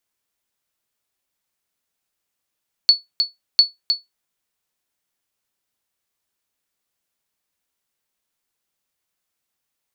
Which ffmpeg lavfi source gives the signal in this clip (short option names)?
-f lavfi -i "aevalsrc='0.708*(sin(2*PI*4430*mod(t,0.7))*exp(-6.91*mod(t,0.7)/0.17)+0.447*sin(2*PI*4430*max(mod(t,0.7)-0.31,0))*exp(-6.91*max(mod(t,0.7)-0.31,0)/0.17))':d=1.4:s=44100"